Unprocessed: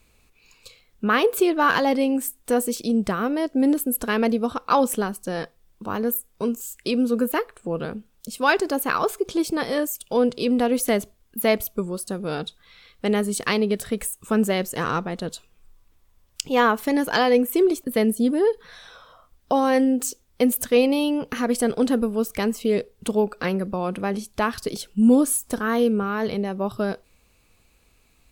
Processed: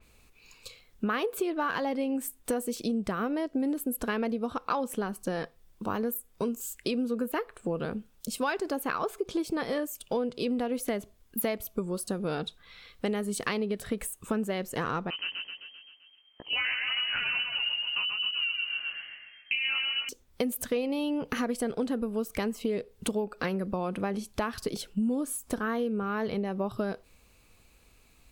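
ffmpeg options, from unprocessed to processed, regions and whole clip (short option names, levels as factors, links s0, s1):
-filter_complex "[0:a]asettb=1/sr,asplit=3[s0][s1][s2];[s0]atrim=end=15.104[s3];[s1]atrim=start=15.1:end=20.09,asetpts=PTS-STARTPTS,afade=t=in:d=0.004:c=qsin,afade=t=out:st=4.986:d=0.004:c=qsin,aecho=1:1:130|260|390|520|650|780|910:0.631|0.347|0.191|0.105|0.0577|0.0318|0.0175,atrim=end_sample=220059,flanger=delay=16:depth=5.8:speed=2.3,lowpass=f=2700:t=q:w=0.5098,lowpass=f=2700:t=q:w=0.6013,lowpass=f=2700:t=q:w=0.9,lowpass=f=2700:t=q:w=2.563,afreqshift=-3200[s4];[s2]atrim=start=20.086[s5];[s3][s4]acrossfade=d=0.004:c1=hsin:c2=qsin[s6];[s6][s5]acrossfade=d=0.004:c1=qsin:c2=hsin,acompressor=threshold=0.0447:ratio=6,adynamicequalizer=threshold=0.00316:dfrequency=4000:dqfactor=0.7:tfrequency=4000:tqfactor=0.7:attack=5:release=100:ratio=0.375:range=3.5:mode=cutabove:tftype=highshelf"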